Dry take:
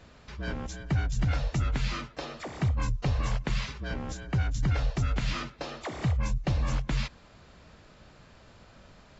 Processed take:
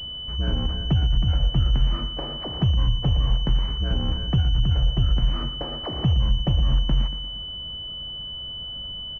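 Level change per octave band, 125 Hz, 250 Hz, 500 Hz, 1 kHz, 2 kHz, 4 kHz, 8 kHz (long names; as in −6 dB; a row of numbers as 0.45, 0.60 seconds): +7.0 dB, +5.5 dB, +3.0 dB, +0.5 dB, −6.5 dB, +16.5 dB, can't be measured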